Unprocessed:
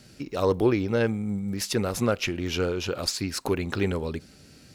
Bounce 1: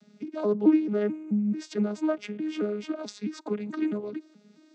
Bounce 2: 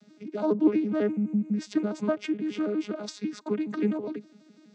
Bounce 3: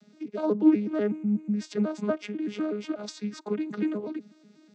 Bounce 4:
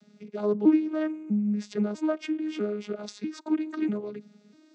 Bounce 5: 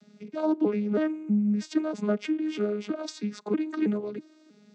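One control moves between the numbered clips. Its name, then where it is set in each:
vocoder on a broken chord, a note every: 217 ms, 83 ms, 123 ms, 646 ms, 321 ms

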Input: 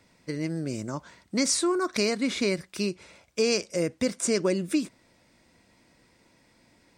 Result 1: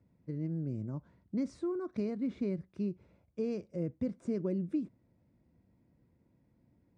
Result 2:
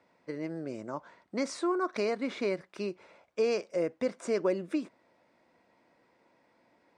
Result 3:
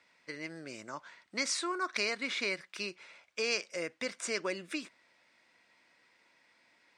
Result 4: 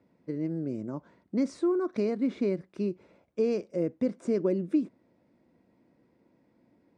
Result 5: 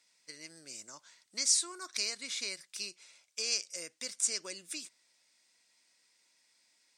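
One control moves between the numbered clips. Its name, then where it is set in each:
band-pass filter, frequency: 100 Hz, 750 Hz, 2 kHz, 290 Hz, 7.1 kHz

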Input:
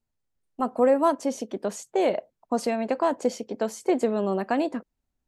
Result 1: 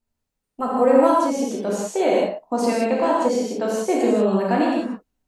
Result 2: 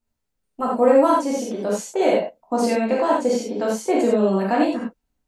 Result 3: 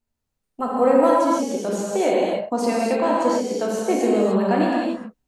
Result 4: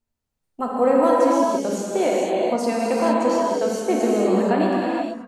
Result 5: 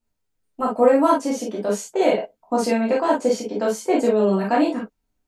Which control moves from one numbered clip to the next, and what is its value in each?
gated-style reverb, gate: 210 ms, 120 ms, 320 ms, 500 ms, 80 ms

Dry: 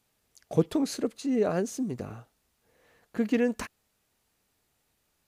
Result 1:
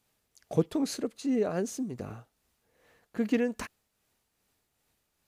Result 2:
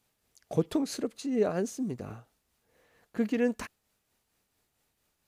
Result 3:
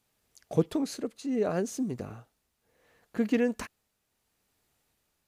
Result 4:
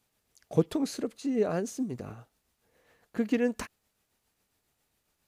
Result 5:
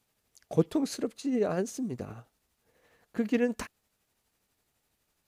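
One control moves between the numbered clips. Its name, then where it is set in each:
tremolo, rate: 2.5 Hz, 4.4 Hz, 0.69 Hz, 7.3 Hz, 12 Hz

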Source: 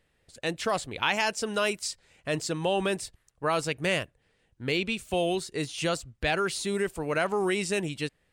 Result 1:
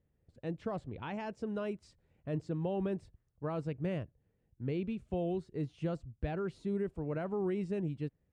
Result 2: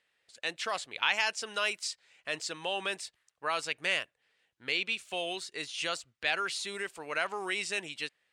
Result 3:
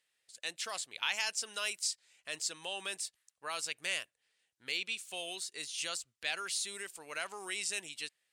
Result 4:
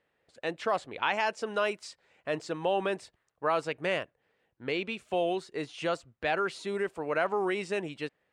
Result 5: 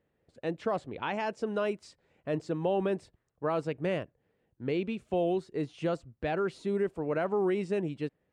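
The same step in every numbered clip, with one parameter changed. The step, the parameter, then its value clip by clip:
band-pass filter, frequency: 100 Hz, 2.9 kHz, 7.7 kHz, 830 Hz, 310 Hz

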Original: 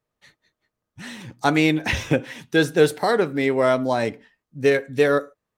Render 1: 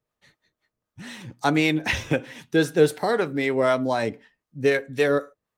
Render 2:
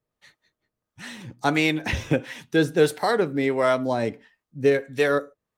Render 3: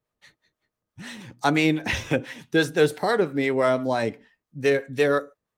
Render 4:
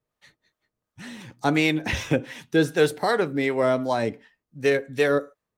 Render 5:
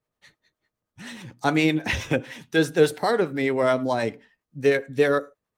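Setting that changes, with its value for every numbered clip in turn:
harmonic tremolo, rate: 3.9 Hz, 1.5 Hz, 5.9 Hz, 2.7 Hz, 9.6 Hz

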